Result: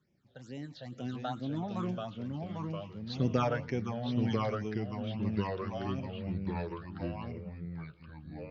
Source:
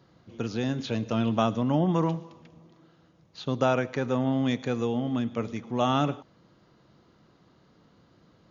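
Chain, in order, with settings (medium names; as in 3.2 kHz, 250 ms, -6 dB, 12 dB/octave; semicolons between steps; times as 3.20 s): Doppler pass-by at 3.00 s, 35 m/s, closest 21 m; phase shifter stages 8, 2.2 Hz, lowest notch 300–1300 Hz; ever faster or slower copies 582 ms, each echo -2 st, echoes 3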